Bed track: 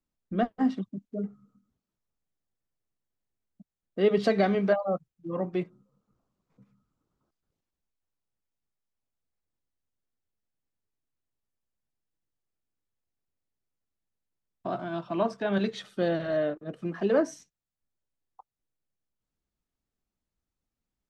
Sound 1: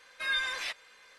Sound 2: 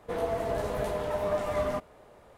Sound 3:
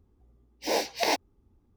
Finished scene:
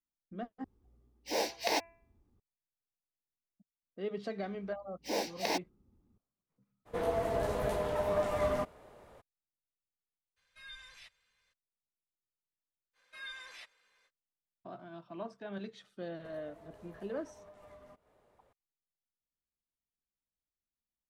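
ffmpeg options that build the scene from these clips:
-filter_complex "[3:a]asplit=2[a][b];[2:a]asplit=2[c][d];[1:a]asplit=2[e][f];[0:a]volume=-15dB[g];[a]bandreject=f=335.3:t=h:w=4,bandreject=f=670.6:t=h:w=4,bandreject=f=1.0059k:t=h:w=4,bandreject=f=1.3412k:t=h:w=4,bandreject=f=1.6765k:t=h:w=4,bandreject=f=2.0118k:t=h:w=4,bandreject=f=2.3471k:t=h:w=4,bandreject=f=2.6824k:t=h:w=4[h];[b]equalizer=f=190:w=1.1:g=8.5[i];[e]firequalizer=gain_entry='entry(110,0);entry(290,-21);entry(2900,-14)':delay=0.05:min_phase=1[j];[d]acompressor=threshold=-38dB:ratio=10:attack=19:release=370:knee=1:detection=peak[k];[g]asplit=2[l][m];[l]atrim=end=0.644[n];[h]atrim=end=1.76,asetpts=PTS-STARTPTS,volume=-5.5dB[o];[m]atrim=start=2.396[p];[i]atrim=end=1.76,asetpts=PTS-STARTPTS,volume=-8dB,afade=t=in:d=0.004:c=hsin,afade=t=out:st=1.756:d=0.004:c=hsin,adelay=4420[q];[c]atrim=end=2.37,asetpts=PTS-STARTPTS,volume=-2dB,afade=t=in:d=0.02,afade=t=out:st=2.35:d=0.02,adelay=6850[r];[j]atrim=end=1.18,asetpts=PTS-STARTPTS,volume=-4dB,afade=t=in:d=0.02,afade=t=out:st=1.16:d=0.02,adelay=10360[s];[f]atrim=end=1.18,asetpts=PTS-STARTPTS,volume=-15dB,afade=t=in:d=0.05,afade=t=out:st=1.13:d=0.05,adelay=12930[t];[k]atrim=end=2.37,asetpts=PTS-STARTPTS,volume=-15dB,afade=t=in:d=0.004:c=hsin,afade=t=out:st=2.366:d=0.004:c=hsin,adelay=16160[u];[n][o]acrossfade=d=0.004:c1=hsin:c2=hsin[v];[v][p]acrossfade=d=0.004:c1=hsin:c2=hsin[w];[w][q][r][s][t][u]amix=inputs=6:normalize=0"

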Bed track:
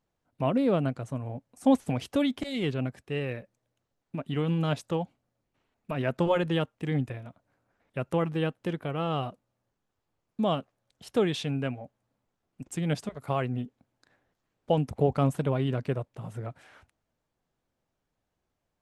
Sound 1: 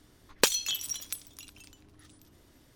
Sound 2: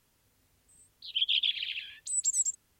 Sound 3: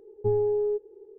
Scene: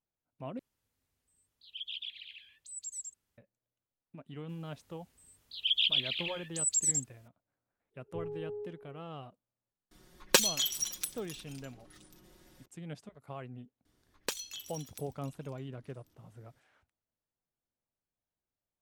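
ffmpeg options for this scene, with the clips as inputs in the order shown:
-filter_complex "[2:a]asplit=2[a][b];[1:a]asplit=2[c][d];[0:a]volume=-15dB[e];[3:a]asplit=2[f][g];[g]adelay=326.5,volume=-13dB,highshelf=f=4k:g=-7.35[h];[f][h]amix=inputs=2:normalize=0[i];[c]aecho=1:1:5.5:0.83[j];[e]asplit=2[k][l];[k]atrim=end=0.594[m];[a]atrim=end=2.79,asetpts=PTS-STARTPTS,volume=-13.5dB[n];[l]atrim=start=3.376[o];[b]atrim=end=2.79,asetpts=PTS-STARTPTS,volume=-0.5dB,afade=t=in:d=0.004:c=hsin,afade=t=out:st=2.786:d=0.004:c=hsin,adelay=198009S[p];[i]atrim=end=1.18,asetpts=PTS-STARTPTS,volume=-16.5dB,afade=t=in:d=0.1,afade=t=out:st=1.08:d=0.1,adelay=7900[q];[j]atrim=end=2.75,asetpts=PTS-STARTPTS,volume=-2dB,afade=t=in:d=0.004:c=hsin,afade=t=out:st=2.746:d=0.004:c=hsin,adelay=9910[r];[d]atrim=end=2.75,asetpts=PTS-STARTPTS,volume=-12.5dB,afade=t=in:d=0.004:c=hsin,afade=t=out:st=2.746:d=0.004:c=hsin,adelay=13850[s];[m][n]acrossfade=d=0.004:c1=hsin:c2=hsin[t];[t][o]acrossfade=d=0.004:c1=hsin:c2=hsin[u];[u][p][q][r][s]amix=inputs=5:normalize=0"

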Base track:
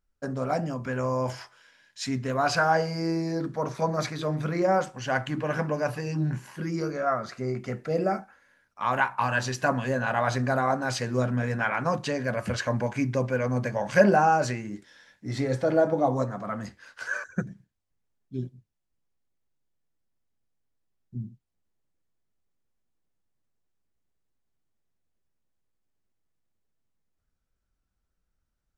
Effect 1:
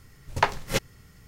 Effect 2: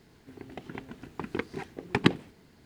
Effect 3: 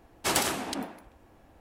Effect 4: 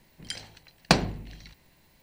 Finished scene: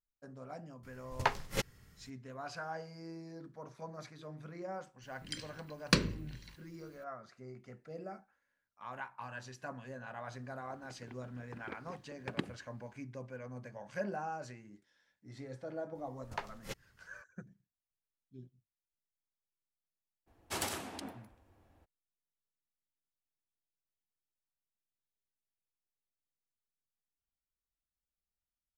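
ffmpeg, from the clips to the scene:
-filter_complex "[1:a]asplit=2[a][b];[0:a]volume=-19.5dB[c];[4:a]asuperstop=centerf=760:order=4:qfactor=1.7[d];[3:a]equalizer=f=91:t=o:w=0.29:g=11.5[e];[a]atrim=end=1.27,asetpts=PTS-STARTPTS,volume=-8.5dB,afade=t=in:d=0.004:c=hsin,afade=t=out:st=1.266:d=0.004:c=hsin,adelay=830[f];[d]atrim=end=2.02,asetpts=PTS-STARTPTS,volume=-6dB,afade=t=in:d=0.004:c=hsin,afade=t=out:st=2.016:d=0.004:c=hsin,adelay=5020[g];[2:a]atrim=end=2.65,asetpts=PTS-STARTPTS,volume=-15dB,afade=t=in:d=0.004:c=hsin,afade=t=out:st=2.646:d=0.004:c=hsin,adelay=10330[h];[b]atrim=end=1.27,asetpts=PTS-STARTPTS,volume=-18dB,afade=t=in:d=0.004:c=hsin,afade=t=out:st=1.266:d=0.004:c=hsin,adelay=15950[i];[e]atrim=end=1.6,asetpts=PTS-STARTPTS,volume=-11dB,afade=t=in:d=0.02,afade=t=out:st=1.58:d=0.02,adelay=20260[j];[c][f][g][h][i][j]amix=inputs=6:normalize=0"

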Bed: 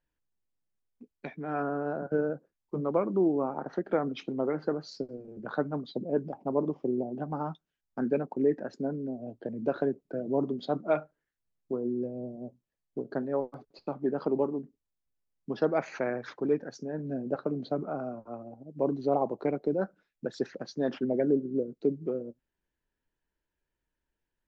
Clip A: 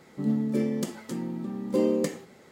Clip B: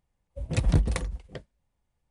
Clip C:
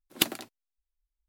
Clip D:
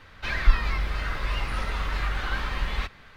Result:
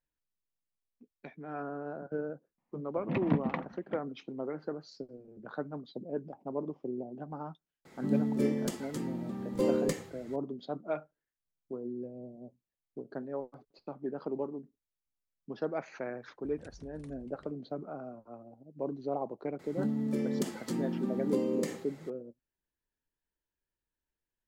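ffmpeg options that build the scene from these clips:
-filter_complex "[2:a]asplit=2[a][b];[1:a]asplit=2[c][d];[0:a]volume=-7.5dB[e];[a]highpass=f=170:w=0.5412,highpass=f=170:w=1.3066,equalizer=f=240:t=q:w=4:g=8,equalizer=f=420:t=q:w=4:g=-9,equalizer=f=1k:t=q:w=4:g=5,equalizer=f=1.5k:t=q:w=4:g=-4,lowpass=f=2.5k:w=0.5412,lowpass=f=2.5k:w=1.3066[f];[c]asubboost=boost=12:cutoff=85[g];[b]acompressor=threshold=-38dB:ratio=6:attack=3.2:release=140:knee=1:detection=peak[h];[d]acompressor=threshold=-30dB:ratio=5:attack=32:release=134:knee=1:detection=peak[i];[f]atrim=end=2.1,asetpts=PTS-STARTPTS,volume=-0.5dB,afade=t=in:d=0.004:c=hsin,afade=t=out:st=2.096:d=0.004:c=hsin,adelay=2580[j];[g]atrim=end=2.51,asetpts=PTS-STARTPTS,volume=-2dB,afade=t=in:d=0.004:c=hsin,afade=t=out:st=2.506:d=0.004:c=hsin,adelay=7850[k];[h]atrim=end=2.1,asetpts=PTS-STARTPTS,volume=-13.5dB,afade=t=in:d=0.004:c=hsin,afade=t=out:st=2.096:d=0.004:c=hsin,adelay=16080[l];[i]atrim=end=2.51,asetpts=PTS-STARTPTS,volume=-1dB,afade=t=in:d=0.004:c=hsin,afade=t=out:st=2.506:d=0.004:c=hsin,adelay=19590[m];[e][j][k][l][m]amix=inputs=5:normalize=0"

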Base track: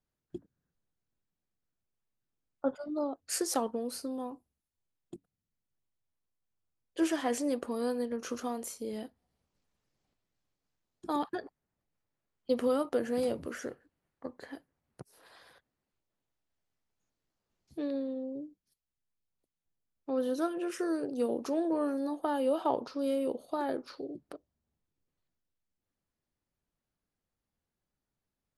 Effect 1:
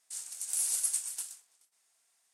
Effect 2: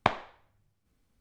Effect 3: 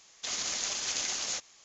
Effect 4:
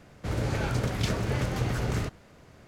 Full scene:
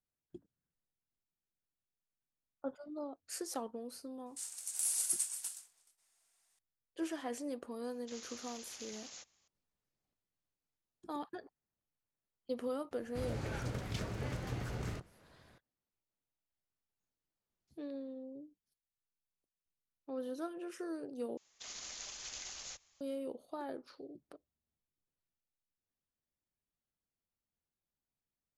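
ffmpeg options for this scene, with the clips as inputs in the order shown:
-filter_complex "[3:a]asplit=2[a][b];[0:a]volume=-9.5dB[c];[b]asubboost=boost=11.5:cutoff=93[d];[c]asplit=2[e][f];[e]atrim=end=21.374[g];[d]atrim=end=1.64,asetpts=PTS-STARTPTS,volume=-13.5dB[h];[f]atrim=start=23.006[i];[1:a]atrim=end=2.33,asetpts=PTS-STARTPTS,volume=-3.5dB,afade=t=in:d=0.004:c=hsin,afade=t=out:st=2.326:d=0.004:c=hsin,adelay=4260[j];[a]atrim=end=1.64,asetpts=PTS-STARTPTS,volume=-17.5dB,afade=t=in:d=0.004:c=hsin,afade=t=out:st=1.636:d=0.004:c=hsin,adelay=7840[k];[4:a]atrim=end=2.67,asetpts=PTS-STARTPTS,volume=-11.5dB,afade=t=in:d=0.004:c=hsin,afade=t=out:st=2.666:d=0.004:c=hsin,adelay=12910[l];[g][h]acrossfade=d=0.004:c1=hsin:c2=hsin[m];[m][i]acrossfade=d=0.004:c1=hsin:c2=hsin[n];[n][j][k][l]amix=inputs=4:normalize=0"

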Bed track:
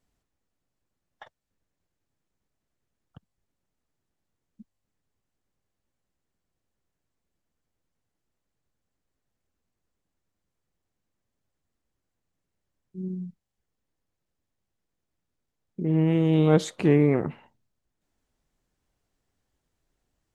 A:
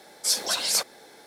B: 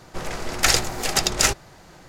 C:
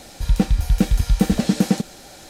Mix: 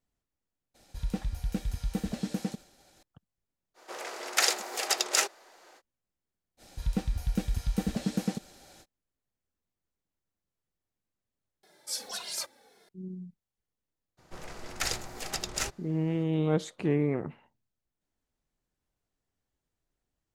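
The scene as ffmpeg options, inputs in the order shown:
-filter_complex "[3:a]asplit=2[a][b];[2:a]asplit=2[c][d];[0:a]volume=-7.5dB[e];[a]agate=range=-33dB:threshold=-39dB:ratio=3:release=100:detection=peak[f];[c]highpass=f=380:w=0.5412,highpass=f=380:w=1.3066[g];[1:a]asplit=2[h][i];[i]adelay=2.4,afreqshift=-1.7[j];[h][j]amix=inputs=2:normalize=1[k];[e]asplit=2[l][m];[l]atrim=end=11.634[n];[k]atrim=end=1.26,asetpts=PTS-STARTPTS,volume=-8.5dB[o];[m]atrim=start=12.886[p];[f]atrim=end=2.29,asetpts=PTS-STARTPTS,volume=-15dB,afade=t=in:d=0.004:c=hsin,afade=t=out:st=2.286:d=0.004:c=hsin,adelay=740[q];[g]atrim=end=2.08,asetpts=PTS-STARTPTS,volume=-6.5dB,afade=t=in:d=0.05,afade=t=out:st=2.03:d=0.05,adelay=3740[r];[b]atrim=end=2.29,asetpts=PTS-STARTPTS,volume=-12.5dB,afade=t=in:d=0.05,afade=t=out:st=2.24:d=0.05,adelay=6570[s];[d]atrim=end=2.08,asetpts=PTS-STARTPTS,volume=-13.5dB,afade=t=in:d=0.02,afade=t=out:st=2.06:d=0.02,adelay=14170[t];[n][o]acrossfade=d=0.004:c1=hsin:c2=hsin[u];[u][p]acrossfade=d=0.004:c1=hsin:c2=hsin[v];[v][q][r][s][t]amix=inputs=5:normalize=0"

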